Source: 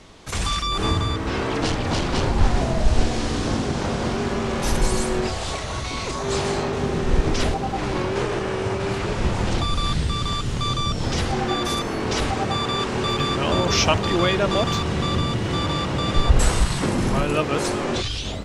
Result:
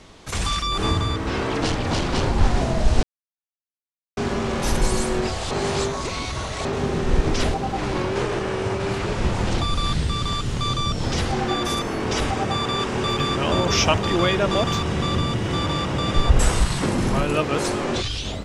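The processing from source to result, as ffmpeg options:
ffmpeg -i in.wav -filter_complex "[0:a]asettb=1/sr,asplit=3[link_01][link_02][link_03];[link_01]atrim=end=11.534[link_04];[link_02]atrim=start=11.53:end=16.55,asetpts=PTS-STARTPTS,afade=type=in:duration=0.004:curve=qsin,afade=type=out:start_time=5.016:duration=0.004:curve=qsin,bandreject=frequency=4200:width=12[link_05];[link_03]atrim=start=16.546[link_06];[link_04][link_05]acrossfade=duration=0.004:curve1=hsin:curve2=qsin[link_07];[link_07][link_06]acrossfade=duration=0.004:curve1=qsin:curve2=hsin,asplit=5[link_08][link_09][link_10][link_11][link_12];[link_08]atrim=end=3.03,asetpts=PTS-STARTPTS,afade=type=out:start_time=3.026:duration=0.004:curve=hsin[link_13];[link_09]atrim=start=3.03:end=4.17,asetpts=PTS-STARTPTS,volume=0[link_14];[link_10]atrim=start=4.17:end=5.512,asetpts=PTS-STARTPTS,afade=type=in:duration=0.004:curve=hsin[link_15];[link_11]atrim=start=5.508:end=6.652,asetpts=PTS-STARTPTS,areverse[link_16];[link_12]atrim=start=6.648[link_17];[link_13][link_14][link_15]concat=n=3:v=0:a=1[link_18];[link_18][link_16]acrossfade=duration=0.004:curve1=hsin:curve2=hsin[link_19];[link_19][link_17]acrossfade=duration=0.004:curve1=hsin:curve2=hsin" out.wav

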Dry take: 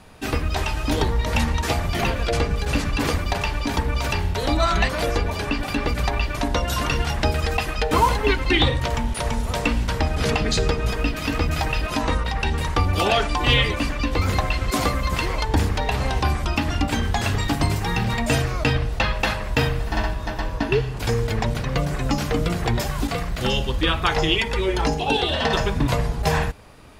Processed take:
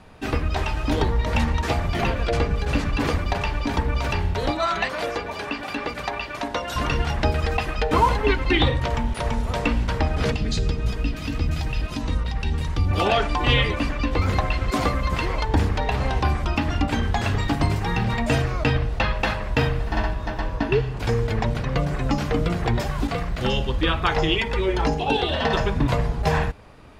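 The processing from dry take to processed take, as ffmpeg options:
ffmpeg -i in.wav -filter_complex "[0:a]asettb=1/sr,asplit=3[link_01][link_02][link_03];[link_01]atrim=end=4.514[link_04];[link_02]atrim=start=4.51:end=6.76,asetpts=PTS-STARTPTS,afade=type=in:duration=0.004:curve=qsin,afade=type=out:start_time=2.246:duration=0.004:curve=qsin,highpass=frequency=460:poles=1[link_05];[link_03]atrim=start=6.756[link_06];[link_04][link_05]acrossfade=duration=0.004:curve1=hsin:curve2=qsin[link_07];[link_07][link_06]acrossfade=duration=0.004:curve1=qsin:curve2=hsin,asettb=1/sr,asplit=3[link_08][link_09][link_10];[link_08]atrim=end=10.314[link_11];[link_09]atrim=start=10.31:end=12.91,asetpts=PTS-STARTPTS,afade=type=in:duration=0.004:curve=qsin,afade=type=out:start_time=2.596:duration=0.004:curve=qsin,acrossover=split=290|3000[link_12][link_13][link_14];[link_13]acompressor=threshold=-37dB:ratio=4:attack=3.2:release=140:knee=2.83:detection=peak[link_15];[link_12][link_15][link_14]amix=inputs=3:normalize=0[link_16];[link_10]atrim=start=12.906[link_17];[link_11][link_16]acrossfade=duration=0.004:curve1=hsin:curve2=qsin[link_18];[link_18][link_17]acrossfade=duration=0.004:curve1=qsin:curve2=hsin,lowpass=frequency=3100:poles=1" out.wav

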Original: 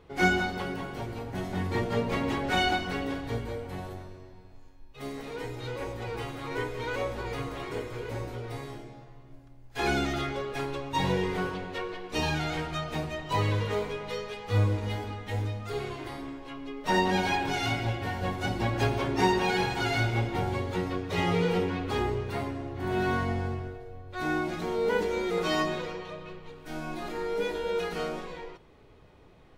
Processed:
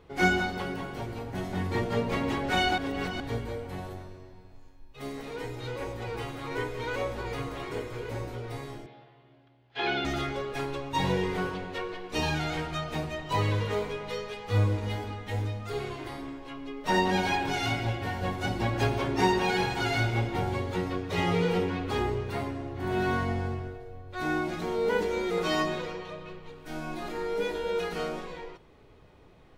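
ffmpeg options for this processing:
ffmpeg -i in.wav -filter_complex "[0:a]asettb=1/sr,asplit=3[link_01][link_02][link_03];[link_01]atrim=end=8.864[link_04];[link_02]atrim=start=8.86:end=10.05,asetpts=PTS-STARTPTS,afade=type=in:duration=0.004:curve=qsin,afade=type=out:start_time=1.186:duration=0.004:curve=qsin,highpass=180,equalizer=frequency=190:width_type=q:width=4:gain=-8,equalizer=frequency=290:width_type=q:width=4:gain=-6,equalizer=frequency=510:width_type=q:width=4:gain=-4,equalizer=frequency=1100:width_type=q:width=4:gain=-4,equalizer=frequency=3200:width_type=q:width=4:gain=6,lowpass=frequency=4100:width=0.5412,lowpass=frequency=4100:width=1.3066[link_05];[link_03]atrim=start=10.046[link_06];[link_04][link_05]acrossfade=duration=0.004:curve1=hsin:curve2=qsin[link_07];[link_07][link_06]acrossfade=duration=0.004:curve1=qsin:curve2=hsin,asplit=3[link_08][link_09][link_10];[link_08]atrim=end=2.782[link_11];[link_09]atrim=start=2.778:end=3.202,asetpts=PTS-STARTPTS,areverse[link_12];[link_10]atrim=start=3.198[link_13];[link_11][link_12]acrossfade=duration=0.004:curve1=hsin:curve2=hsin[link_14];[link_14][link_13]acrossfade=duration=0.004:curve1=hsin:curve2=hsin" out.wav

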